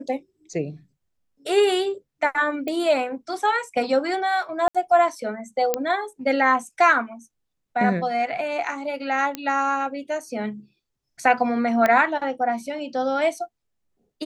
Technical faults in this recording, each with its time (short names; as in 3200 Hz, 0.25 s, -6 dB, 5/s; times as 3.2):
2.68 pop -16 dBFS
4.68–4.75 gap 66 ms
5.74 pop -7 dBFS
9.35 pop -12 dBFS
11.86 pop -8 dBFS